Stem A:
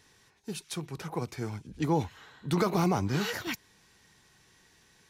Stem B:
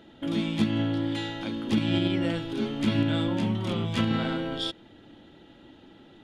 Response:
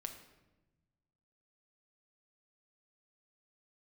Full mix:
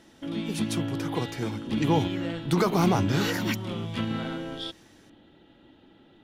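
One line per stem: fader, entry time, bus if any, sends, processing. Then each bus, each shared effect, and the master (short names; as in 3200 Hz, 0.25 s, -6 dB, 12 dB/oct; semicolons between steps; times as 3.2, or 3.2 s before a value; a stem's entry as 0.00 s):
-0.5 dB, 0.00 s, no send, AGC gain up to 4 dB
-4.0 dB, 0.00 s, no send, bell 6900 Hz -5.5 dB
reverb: off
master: dry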